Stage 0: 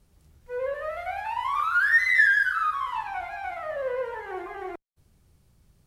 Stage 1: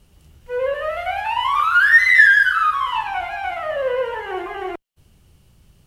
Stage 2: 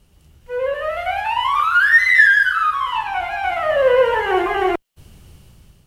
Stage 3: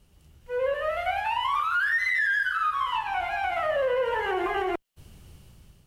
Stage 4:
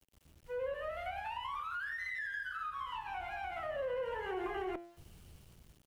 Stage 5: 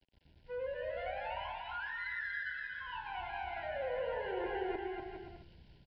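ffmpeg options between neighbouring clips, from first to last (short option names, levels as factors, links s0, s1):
-af "equalizer=f=2900:w=5.9:g=11,volume=2.51"
-af "dynaudnorm=f=380:g=5:m=4.73,volume=0.891"
-af "alimiter=limit=0.211:level=0:latency=1:release=120,volume=0.562"
-filter_complex "[0:a]bandreject=f=114.7:t=h:w=4,bandreject=f=229.4:t=h:w=4,bandreject=f=344.1:t=h:w=4,bandreject=f=458.8:t=h:w=4,bandreject=f=573.5:t=h:w=4,bandreject=f=688.2:t=h:w=4,bandreject=f=802.9:t=h:w=4,bandreject=f=917.6:t=h:w=4,bandreject=f=1032.3:t=h:w=4,bandreject=f=1147:t=h:w=4,bandreject=f=1261.7:t=h:w=4,bandreject=f=1376.4:t=h:w=4,bandreject=f=1491.1:t=h:w=4,bandreject=f=1605.8:t=h:w=4,bandreject=f=1720.5:t=h:w=4,bandreject=f=1835.2:t=h:w=4,bandreject=f=1949.9:t=h:w=4,bandreject=f=2064.6:t=h:w=4,bandreject=f=2179.3:t=h:w=4,bandreject=f=2294:t=h:w=4,bandreject=f=2408.7:t=h:w=4,bandreject=f=2523.4:t=h:w=4,bandreject=f=2638.1:t=h:w=4,bandreject=f=2752.8:t=h:w=4,bandreject=f=2867.5:t=h:w=4,bandreject=f=2982.2:t=h:w=4,bandreject=f=3096.9:t=h:w=4,bandreject=f=3211.6:t=h:w=4,bandreject=f=3326.3:t=h:w=4,bandreject=f=3441:t=h:w=4,bandreject=f=3555.7:t=h:w=4,bandreject=f=3670.4:t=h:w=4,bandreject=f=3785.1:t=h:w=4,bandreject=f=3899.8:t=h:w=4,bandreject=f=4014.5:t=h:w=4,bandreject=f=4129.2:t=h:w=4,bandreject=f=4243.9:t=h:w=4,bandreject=f=4358.6:t=h:w=4,bandreject=f=4473.3:t=h:w=4,bandreject=f=4588:t=h:w=4,aeval=exprs='val(0)*gte(abs(val(0)),0.00211)':c=same,acrossover=split=390[s0][s1];[s1]acompressor=threshold=0.0178:ratio=2.5[s2];[s0][s2]amix=inputs=2:normalize=0,volume=0.447"
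-filter_complex "[0:a]asplit=2[s0][s1];[s1]aecho=0:1:240|408|525.6|607.9|665.5:0.631|0.398|0.251|0.158|0.1[s2];[s0][s2]amix=inputs=2:normalize=0,aresample=11025,aresample=44100,asuperstop=centerf=1200:order=12:qfactor=3.6,volume=0.841"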